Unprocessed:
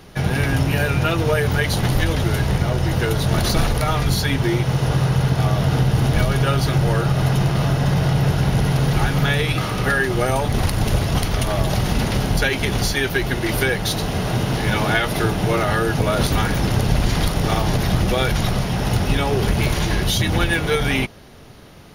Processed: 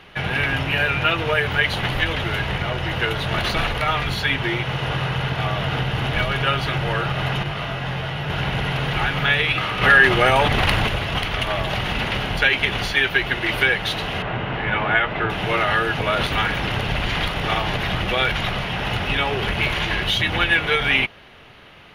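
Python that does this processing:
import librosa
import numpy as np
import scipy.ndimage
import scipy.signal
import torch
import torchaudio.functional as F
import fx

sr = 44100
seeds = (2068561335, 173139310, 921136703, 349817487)

y = fx.detune_double(x, sr, cents=13, at=(7.43, 8.3))
y = fx.env_flatten(y, sr, amount_pct=100, at=(9.81, 10.86), fade=0.02)
y = fx.lowpass(y, sr, hz=2100.0, slope=12, at=(14.22, 15.3))
y = fx.curve_eq(y, sr, hz=(250.0, 2900.0, 5300.0, 11000.0), db=(0, 15, -3, -6))
y = y * librosa.db_to_amplitude(-7.5)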